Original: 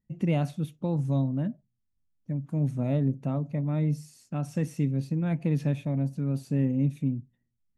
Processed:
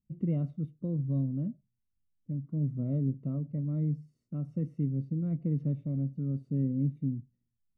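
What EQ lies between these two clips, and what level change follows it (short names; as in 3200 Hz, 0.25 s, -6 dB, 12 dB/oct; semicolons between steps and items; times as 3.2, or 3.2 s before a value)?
running mean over 53 samples; -3.0 dB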